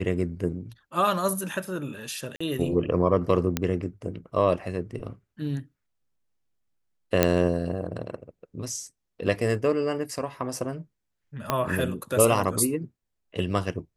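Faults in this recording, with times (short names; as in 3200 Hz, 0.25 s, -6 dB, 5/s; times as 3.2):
2.36–2.4 gap 45 ms
3.57 pop -9 dBFS
7.23 pop -4 dBFS
11.5 pop -9 dBFS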